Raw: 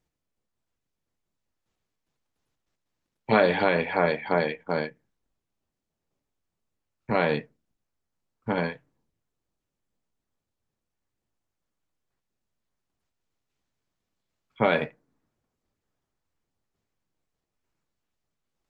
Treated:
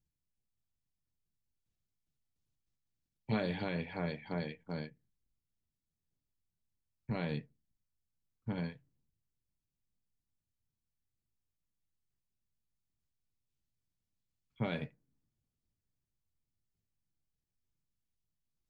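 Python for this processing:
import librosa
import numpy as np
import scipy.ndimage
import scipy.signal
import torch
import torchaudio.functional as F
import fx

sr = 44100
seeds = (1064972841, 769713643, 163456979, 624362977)

y = fx.curve_eq(x, sr, hz=(130.0, 510.0, 1300.0, 4600.0), db=(0, -15, -17, -7))
y = y * 10.0 ** (-2.5 / 20.0)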